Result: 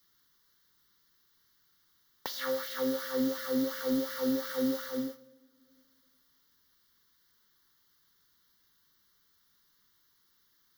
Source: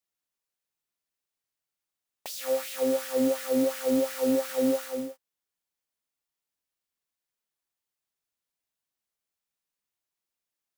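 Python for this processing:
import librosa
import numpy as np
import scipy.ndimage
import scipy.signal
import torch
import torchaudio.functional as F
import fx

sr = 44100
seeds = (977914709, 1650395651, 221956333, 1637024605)

y = fx.fixed_phaser(x, sr, hz=2500.0, stages=6)
y = fx.rev_double_slope(y, sr, seeds[0], early_s=0.71, late_s=1.8, knee_db=-20, drr_db=14.5)
y = fx.band_squash(y, sr, depth_pct=70)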